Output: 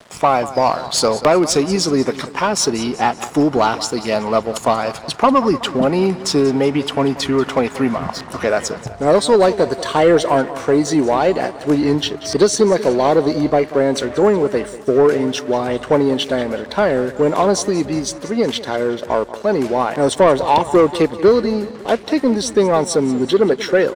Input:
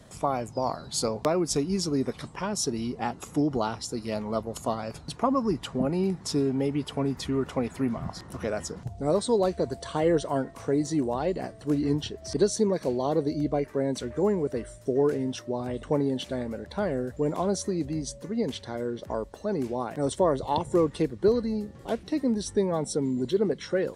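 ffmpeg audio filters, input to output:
-filter_complex "[0:a]aeval=exprs='sgn(val(0))*max(abs(val(0))-0.00266,0)':c=same,aecho=1:1:186|372|558|744:0.141|0.0678|0.0325|0.0156,asplit=2[a][b];[b]highpass=f=720:p=1,volume=15dB,asoftclip=type=tanh:threshold=-11dB[c];[a][c]amix=inputs=2:normalize=0,lowpass=f=4k:p=1,volume=-6dB,volume=9dB"

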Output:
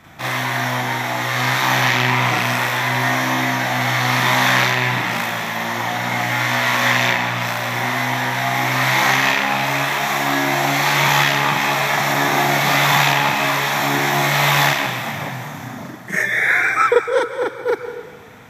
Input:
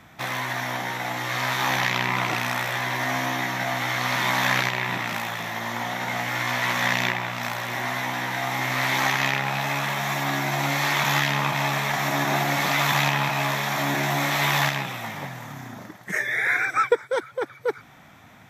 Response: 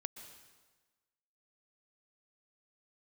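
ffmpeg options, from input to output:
-filter_complex "[0:a]asplit=2[a][b];[1:a]atrim=start_sample=2205,adelay=40[c];[b][c]afir=irnorm=-1:irlink=0,volume=6dB[d];[a][d]amix=inputs=2:normalize=0,volume=2dB"

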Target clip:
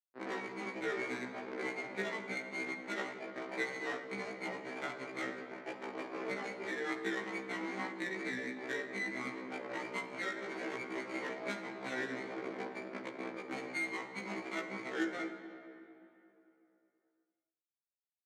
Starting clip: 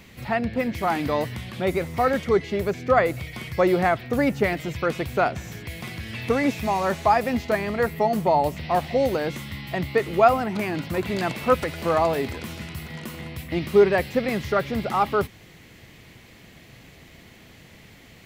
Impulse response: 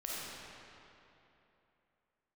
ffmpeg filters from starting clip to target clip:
-filter_complex "[0:a]acrusher=bits=4:mix=0:aa=0.000001,lowpass=f=2.6k:t=q:w=0.5098,lowpass=f=2.6k:t=q:w=0.6013,lowpass=f=2.6k:t=q:w=0.9,lowpass=f=2.6k:t=q:w=2.563,afreqshift=-3000,acompressor=threshold=-36dB:ratio=5,aeval=exprs='max(val(0),0)':c=same,equalizer=f=450:w=1.3:g=11.5,aecho=1:1:20|52|103.2|185.1|316.2:0.631|0.398|0.251|0.158|0.1,adynamicsmooth=sensitivity=5.5:basefreq=1k,highpass=f=240:w=0.5412,highpass=f=240:w=1.3066,asplit=2[a][b];[1:a]atrim=start_sample=2205,lowshelf=f=370:g=5.5[c];[b][c]afir=irnorm=-1:irlink=0,volume=-9dB[d];[a][d]amix=inputs=2:normalize=0,asetrate=36028,aresample=44100,atempo=1.22405,afftfilt=real='re*1.73*eq(mod(b,3),0)':imag='im*1.73*eq(mod(b,3),0)':win_size=2048:overlap=0.75,volume=2.5dB"

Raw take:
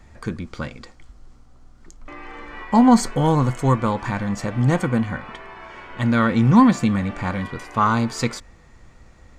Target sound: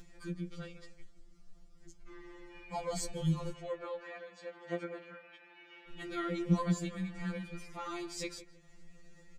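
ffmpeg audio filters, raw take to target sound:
-filter_complex "[0:a]equalizer=f=1k:t=o:w=1.3:g=-13,acompressor=mode=upward:threshold=-34dB:ratio=2.5,asplit=3[a][b][c];[a]afade=t=out:st=3.51:d=0.02[d];[b]highpass=510,lowpass=3.1k,afade=t=in:st=3.51:d=0.02,afade=t=out:st=5.87:d=0.02[e];[c]afade=t=in:st=5.87:d=0.02[f];[d][e][f]amix=inputs=3:normalize=0,asplit=2[g][h];[h]adelay=162,lowpass=f=1.8k:p=1,volume=-14dB,asplit=2[i][j];[j]adelay=162,lowpass=f=1.8k:p=1,volume=0.27,asplit=2[k][l];[l]adelay=162,lowpass=f=1.8k:p=1,volume=0.27[m];[g][i][k][m]amix=inputs=4:normalize=0,afftfilt=real='re*2.83*eq(mod(b,8),0)':imag='im*2.83*eq(mod(b,8),0)':win_size=2048:overlap=0.75,volume=-9dB"

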